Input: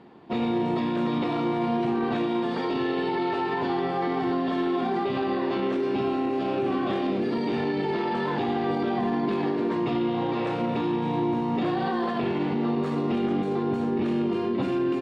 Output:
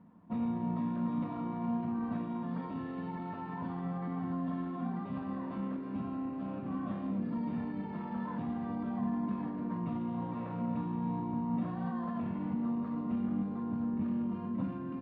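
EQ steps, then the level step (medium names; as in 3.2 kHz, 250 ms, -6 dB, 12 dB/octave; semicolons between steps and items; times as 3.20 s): two resonant band-passes 380 Hz, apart 2.5 oct; tilt EQ -3.5 dB/octave; static phaser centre 350 Hz, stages 4; +8.5 dB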